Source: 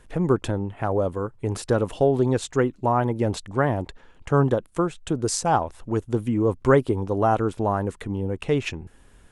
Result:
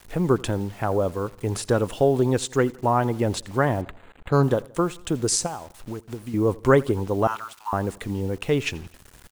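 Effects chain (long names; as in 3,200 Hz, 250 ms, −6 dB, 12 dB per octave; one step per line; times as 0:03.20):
high-shelf EQ 2,200 Hz +4.5 dB
0:05.46–0:06.34: downward compressor 12 to 1, threshold −30 dBFS, peak gain reduction 16 dB
0:07.27–0:07.73: Chebyshev high-pass with heavy ripple 880 Hz, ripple 3 dB
bit reduction 8 bits
repeating echo 85 ms, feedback 52%, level −23 dB
0:03.81–0:04.43: linearly interpolated sample-rate reduction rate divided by 8×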